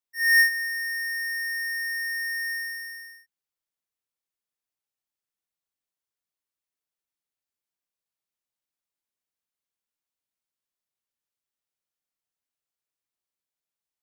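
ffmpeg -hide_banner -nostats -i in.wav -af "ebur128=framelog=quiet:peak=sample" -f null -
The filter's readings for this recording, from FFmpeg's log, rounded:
Integrated loudness:
  I:         -24.2 LUFS
  Threshold: -35.0 LUFS
Loudness range:
  LRA:        19.5 LU
  Threshold: -50.1 LUFS
  LRA low:   -44.0 LUFS
  LRA high:  -24.5 LUFS
Sample peak:
  Peak:      -13.8 dBFS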